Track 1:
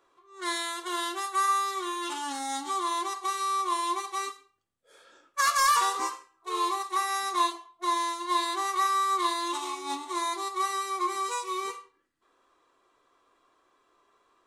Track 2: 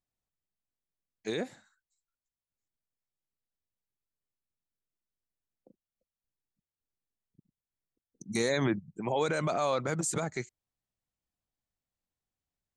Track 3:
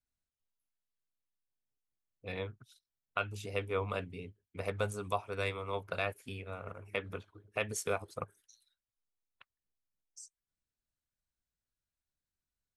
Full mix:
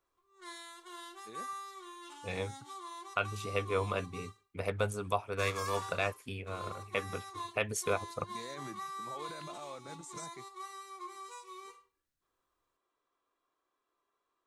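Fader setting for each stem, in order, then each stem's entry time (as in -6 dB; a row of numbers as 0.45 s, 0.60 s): -16.5 dB, -17.5 dB, +2.0 dB; 0.00 s, 0.00 s, 0.00 s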